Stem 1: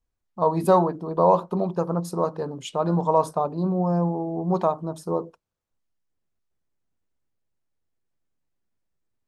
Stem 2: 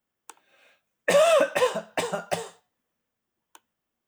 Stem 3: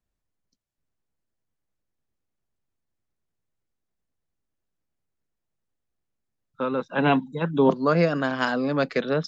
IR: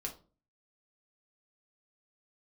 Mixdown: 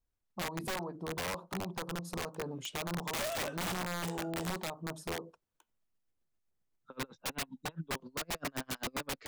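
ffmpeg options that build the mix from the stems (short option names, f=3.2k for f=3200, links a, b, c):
-filter_complex "[0:a]acompressor=threshold=-29dB:ratio=6,volume=-5dB[a];[1:a]alimiter=limit=-13.5dB:level=0:latency=1:release=17,adelay=2050,volume=-16dB[b];[2:a]acompressor=threshold=-21dB:ratio=8,aeval=exprs='val(0)*pow(10,-39*(0.5-0.5*cos(2*PI*7.6*n/s))/20)':c=same,adelay=300,volume=-2.5dB[c];[a][b][c]amix=inputs=3:normalize=0,aeval=exprs='(mod(31.6*val(0)+1,2)-1)/31.6':c=same"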